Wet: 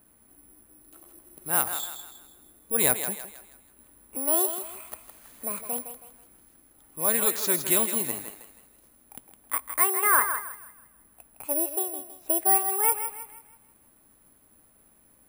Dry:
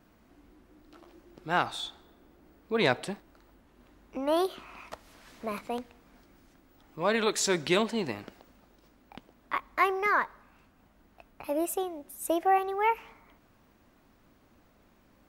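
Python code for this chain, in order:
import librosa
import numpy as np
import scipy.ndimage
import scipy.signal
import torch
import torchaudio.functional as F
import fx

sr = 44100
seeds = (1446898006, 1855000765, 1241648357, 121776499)

y = fx.echo_thinned(x, sr, ms=161, feedback_pct=42, hz=420.0, wet_db=-8.0)
y = (np.kron(scipy.signal.resample_poly(y, 1, 4), np.eye(4)[0]) * 4)[:len(y)]
y = fx.dynamic_eq(y, sr, hz=1200.0, q=0.79, threshold_db=-38.0, ratio=4.0, max_db=7, at=(9.99, 11.54))
y = y * librosa.db_to_amplitude(-3.5)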